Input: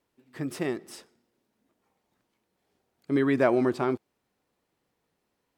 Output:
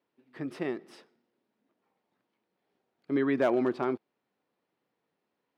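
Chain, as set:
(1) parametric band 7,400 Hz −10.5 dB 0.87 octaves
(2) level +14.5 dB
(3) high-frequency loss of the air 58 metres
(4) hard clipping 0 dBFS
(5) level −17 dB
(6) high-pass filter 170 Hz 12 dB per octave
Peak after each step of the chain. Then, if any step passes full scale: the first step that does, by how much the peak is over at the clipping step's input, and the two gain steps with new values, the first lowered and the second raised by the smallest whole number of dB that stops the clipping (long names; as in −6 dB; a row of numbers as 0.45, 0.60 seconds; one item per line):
−8.0, +6.5, +6.0, 0.0, −17.0, −14.5 dBFS
step 2, 6.0 dB
step 2 +8.5 dB, step 5 −11 dB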